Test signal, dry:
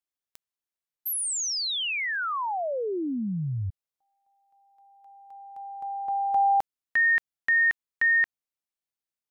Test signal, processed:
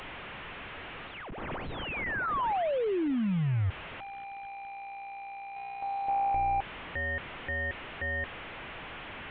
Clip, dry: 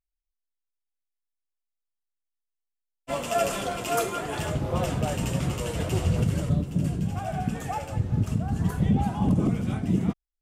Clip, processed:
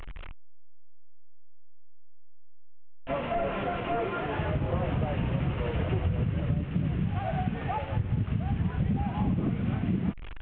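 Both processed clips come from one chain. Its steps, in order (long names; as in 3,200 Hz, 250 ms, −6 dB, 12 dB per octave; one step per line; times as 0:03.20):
linear delta modulator 16 kbit/s, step −36 dBFS
low-shelf EQ 99 Hz +5.5 dB
downward compressor, threshold −24 dBFS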